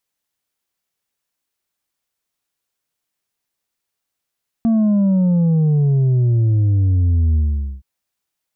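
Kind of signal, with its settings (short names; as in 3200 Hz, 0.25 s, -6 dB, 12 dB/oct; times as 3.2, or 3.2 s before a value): sub drop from 230 Hz, over 3.17 s, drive 4 dB, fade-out 0.46 s, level -12.5 dB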